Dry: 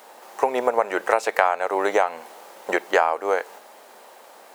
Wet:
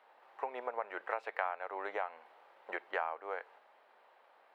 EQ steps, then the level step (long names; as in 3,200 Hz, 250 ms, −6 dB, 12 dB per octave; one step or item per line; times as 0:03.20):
low-pass filter 1,400 Hz 6 dB per octave
high-frequency loss of the air 470 metres
first difference
+5.0 dB